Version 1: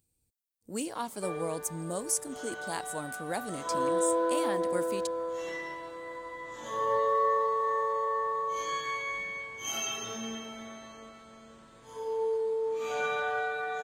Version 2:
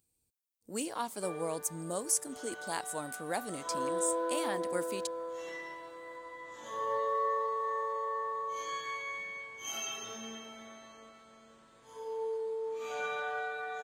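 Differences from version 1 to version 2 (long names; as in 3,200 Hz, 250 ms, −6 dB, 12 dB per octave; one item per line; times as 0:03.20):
background −4.5 dB
master: add low-shelf EQ 210 Hz −7.5 dB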